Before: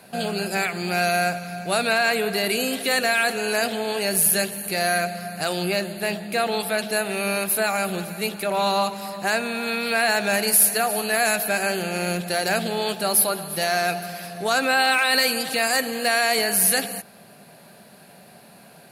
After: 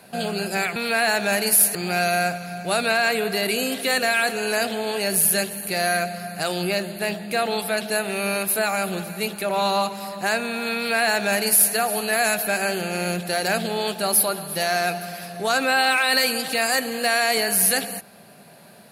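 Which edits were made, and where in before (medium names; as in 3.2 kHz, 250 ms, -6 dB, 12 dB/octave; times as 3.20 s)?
9.77–10.76 s: copy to 0.76 s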